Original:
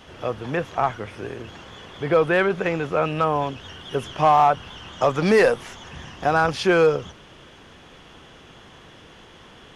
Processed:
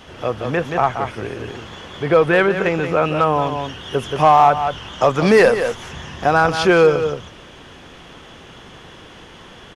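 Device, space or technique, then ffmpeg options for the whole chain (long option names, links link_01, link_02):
ducked delay: -filter_complex "[0:a]asplit=3[link_01][link_02][link_03];[link_02]adelay=177,volume=-4dB[link_04];[link_03]apad=whole_len=437829[link_05];[link_04][link_05]sidechaincompress=threshold=-26dB:ratio=4:attack=10:release=235[link_06];[link_01][link_06]amix=inputs=2:normalize=0,volume=4.5dB"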